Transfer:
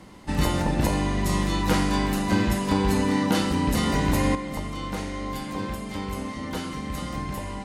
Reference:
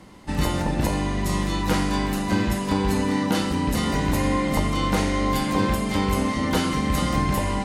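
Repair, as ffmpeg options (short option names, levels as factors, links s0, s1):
-af "asetnsamples=n=441:p=0,asendcmd='4.35 volume volume 9dB',volume=1"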